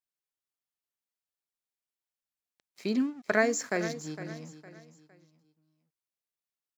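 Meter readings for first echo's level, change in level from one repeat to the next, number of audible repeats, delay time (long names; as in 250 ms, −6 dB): −13.0 dB, −9.5 dB, 3, 459 ms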